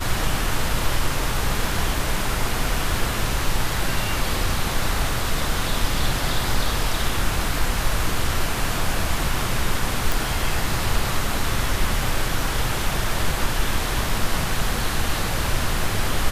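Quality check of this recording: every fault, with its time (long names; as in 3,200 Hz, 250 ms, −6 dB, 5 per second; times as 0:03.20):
0:10.12: click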